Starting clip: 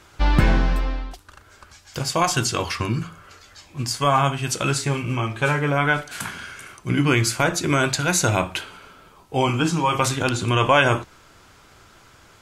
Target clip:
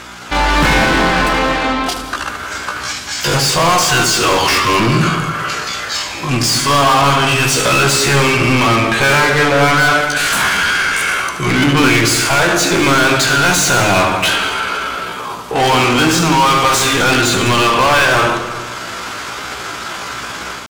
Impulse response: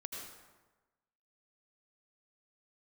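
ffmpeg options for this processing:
-filter_complex "[0:a]dynaudnorm=f=140:g=3:m=8dB,aeval=exprs='val(0)+0.00501*(sin(2*PI*60*n/s)+sin(2*PI*2*60*n/s)/2+sin(2*PI*3*60*n/s)/3+sin(2*PI*4*60*n/s)/4+sin(2*PI*5*60*n/s)/5)':c=same,atempo=0.6,asplit=2[a][b];[b]highpass=f=720:p=1,volume=32dB,asoftclip=type=tanh:threshold=-1dB[c];[a][c]amix=inputs=2:normalize=0,lowpass=f=6.1k:p=1,volume=-6dB,asplit=2[d][e];[1:a]atrim=start_sample=2205,lowshelf=f=440:g=7.5,adelay=78[f];[e][f]afir=irnorm=-1:irlink=0,volume=-7dB[g];[d][g]amix=inputs=2:normalize=0,volume=-5dB"

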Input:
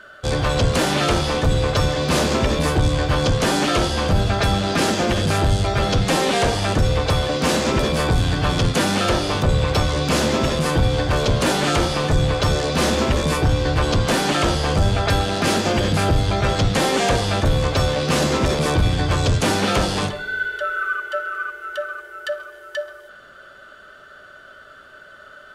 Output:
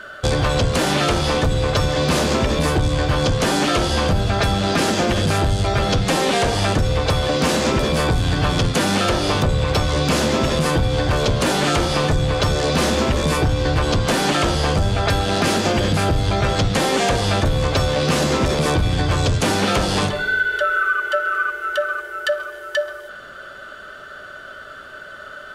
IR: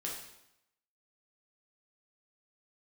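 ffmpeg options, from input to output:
-af "acompressor=threshold=-22dB:ratio=6,volume=7dB"

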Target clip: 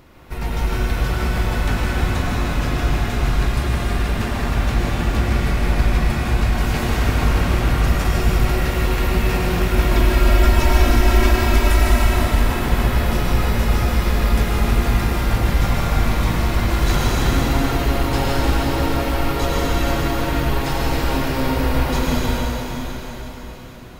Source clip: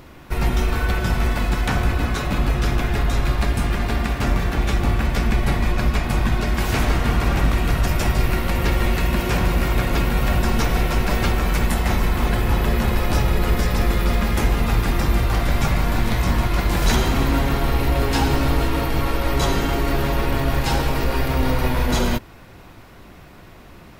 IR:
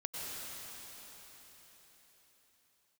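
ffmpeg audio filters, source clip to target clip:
-filter_complex "[0:a]asettb=1/sr,asplit=3[a][b][c];[a]atrim=end=9.784[d];[b]atrim=start=9.78:end=12.02,asetpts=PTS-STARTPTS,afade=t=in:d=0.004:c=qsin,afade=t=out:st=2.236:d=0.004:c=qsin,aecho=1:1:3.1:0.99,atrim=end_sample=98784[e];[c]atrim=start=12.016[f];[d][e]acrossfade=d=0.004:c1=hsin:c2=qsin[g];[g][f]acrossfade=d=0.004:c1=qsin:c2=hsin[h];[1:a]atrim=start_sample=2205[i];[h][i]afir=irnorm=-1:irlink=0,volume=-1.5dB"

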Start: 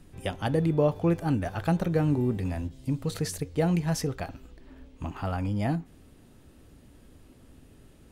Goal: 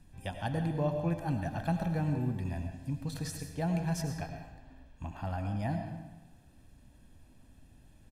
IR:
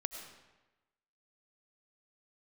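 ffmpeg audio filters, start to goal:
-filter_complex "[0:a]aecho=1:1:1.2:0.59[a];[1:a]atrim=start_sample=2205[b];[a][b]afir=irnorm=-1:irlink=0,volume=-7dB"

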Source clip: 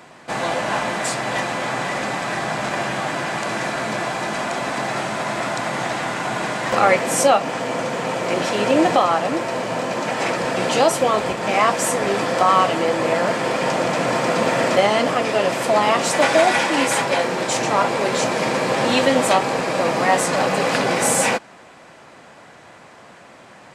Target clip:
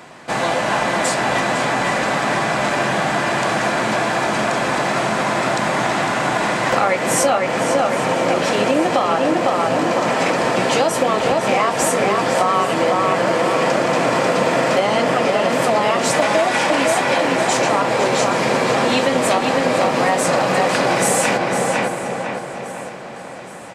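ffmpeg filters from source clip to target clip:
-filter_complex "[0:a]asplit=2[a][b];[b]adelay=504,lowpass=f=2.9k:p=1,volume=-3.5dB,asplit=2[c][d];[d]adelay=504,lowpass=f=2.9k:p=1,volume=0.49,asplit=2[e][f];[f]adelay=504,lowpass=f=2.9k:p=1,volume=0.49,asplit=2[g][h];[h]adelay=504,lowpass=f=2.9k:p=1,volume=0.49,asplit=2[i][j];[j]adelay=504,lowpass=f=2.9k:p=1,volume=0.49,asplit=2[k][l];[l]adelay=504,lowpass=f=2.9k:p=1,volume=0.49[m];[c][e][g][i][k][m]amix=inputs=6:normalize=0[n];[a][n]amix=inputs=2:normalize=0,acompressor=threshold=-17dB:ratio=6,asplit=2[o][p];[p]aecho=0:1:816|1632|2448|3264|4080:0.141|0.0805|0.0459|0.0262|0.0149[q];[o][q]amix=inputs=2:normalize=0,volume=4dB"

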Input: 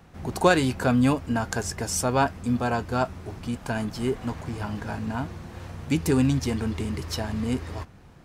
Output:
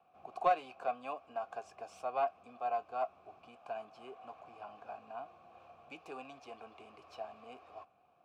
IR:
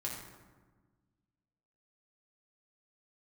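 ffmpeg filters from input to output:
-filter_complex "[0:a]acrossover=split=350|1100|2000[a][b][c][d];[a]acompressor=threshold=-35dB:ratio=6[e];[d]aeval=exprs='0.0562*(abs(mod(val(0)/0.0562+3,4)-2)-1)':c=same[f];[e][b][c][f]amix=inputs=4:normalize=0,asplit=3[g][h][i];[g]bandpass=f=730:t=q:w=8,volume=0dB[j];[h]bandpass=f=1.09k:t=q:w=8,volume=-6dB[k];[i]bandpass=f=2.44k:t=q:w=8,volume=-9dB[l];[j][k][l]amix=inputs=3:normalize=0,aeval=exprs='0.168*(cos(1*acos(clip(val(0)/0.168,-1,1)))-cos(1*PI/2))+0.0168*(cos(3*acos(clip(val(0)/0.168,-1,1)))-cos(3*PI/2))':c=same"

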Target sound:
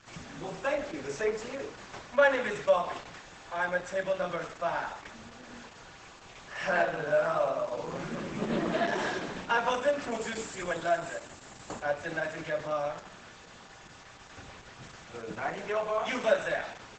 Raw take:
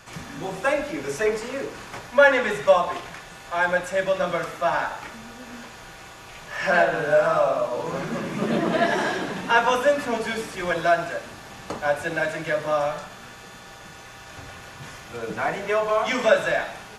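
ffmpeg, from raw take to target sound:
-filter_complex "[0:a]asplit=3[a][b][c];[a]afade=t=out:st=10.09:d=0.02[d];[b]equalizer=f=7.3k:w=7.2:g=14,afade=t=in:st=10.09:d=0.02,afade=t=out:st=11.81:d=0.02[e];[c]afade=t=in:st=11.81:d=0.02[f];[d][e][f]amix=inputs=3:normalize=0,asettb=1/sr,asplit=3[g][h][i];[g]atrim=end=15.854[j];[h]atrim=start=15.85:end=16.63,asetpts=PTS-STARTPTS,afade=t=in:d=0.004:c=qsin,afade=t=out:st=0.776:d=0.004:c=qsin,bandreject=f=5.2k:w=18[k];[i]atrim=start=16.626[l];[j][k]acrossfade=d=0.004:c1=hsin:c2=qsin[m];[m][l]acrossfade=d=0.004:c1=qsin:c2=hsin,volume=-7dB" -ar 48000 -c:a libopus -b:a 10k

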